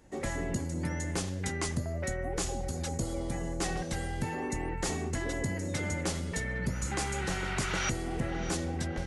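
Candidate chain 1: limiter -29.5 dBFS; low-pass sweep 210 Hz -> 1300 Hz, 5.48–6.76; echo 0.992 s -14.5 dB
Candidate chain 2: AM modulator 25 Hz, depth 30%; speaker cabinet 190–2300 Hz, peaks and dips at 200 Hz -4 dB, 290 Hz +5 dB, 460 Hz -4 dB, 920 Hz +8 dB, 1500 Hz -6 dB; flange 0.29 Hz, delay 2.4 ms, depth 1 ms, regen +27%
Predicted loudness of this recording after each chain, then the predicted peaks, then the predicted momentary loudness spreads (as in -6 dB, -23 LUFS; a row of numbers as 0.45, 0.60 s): -37.5, -42.0 LUFS; -24.0, -26.0 dBFS; 3, 5 LU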